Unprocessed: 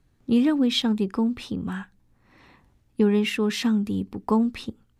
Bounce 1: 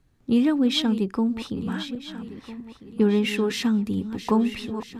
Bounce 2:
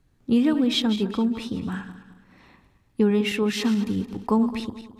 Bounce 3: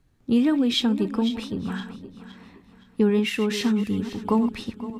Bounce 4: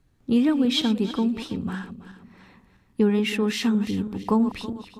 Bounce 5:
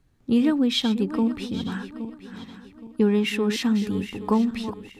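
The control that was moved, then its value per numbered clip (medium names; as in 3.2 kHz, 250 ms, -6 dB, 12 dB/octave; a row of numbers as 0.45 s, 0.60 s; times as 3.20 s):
backward echo that repeats, time: 651 ms, 107 ms, 258 ms, 163 ms, 410 ms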